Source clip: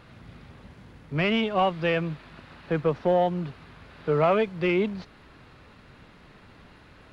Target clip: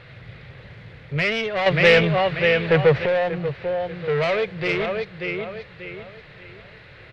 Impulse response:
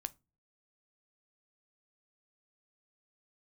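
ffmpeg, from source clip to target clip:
-filter_complex "[0:a]highshelf=f=4.8k:g=-10.5,asplit=2[a][b];[b]aecho=0:1:587|1174|1761|2348:0.422|0.135|0.0432|0.0138[c];[a][c]amix=inputs=2:normalize=0,asoftclip=type=tanh:threshold=-24dB,asettb=1/sr,asplit=3[d][e][f];[d]atrim=end=1.664[g];[e]atrim=start=1.66:end=3.06,asetpts=PTS-STARTPTS,afade=t=in:d=0.004:c=qsin,afade=t=out:st=1.396:d=0.004:c=qsin,acontrast=87[h];[f]atrim=start=3.056[i];[g][h]acrossfade=d=0.004:c1=hsin:c2=qsin[j];[j][i]acrossfade=d=0.004:c1=qsin:c2=hsin,equalizer=f=125:t=o:w=1:g=11,equalizer=f=250:t=o:w=1:g=-10,equalizer=f=500:t=o:w=1:g=10,equalizer=f=1k:t=o:w=1:g=-4,equalizer=f=2k:t=o:w=1:g=12,equalizer=f=4k:t=o:w=1:g=9"

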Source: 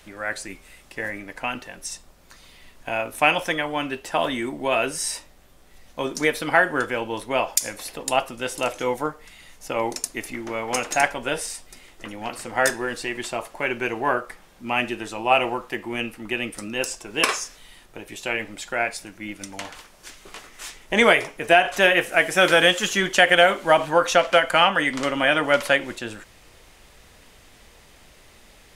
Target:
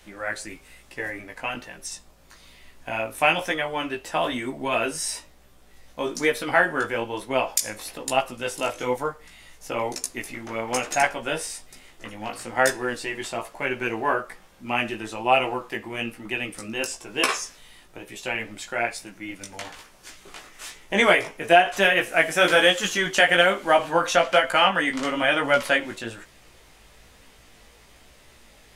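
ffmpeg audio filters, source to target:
-af "flanger=delay=15:depth=3.7:speed=1.1,volume=1.5dB"

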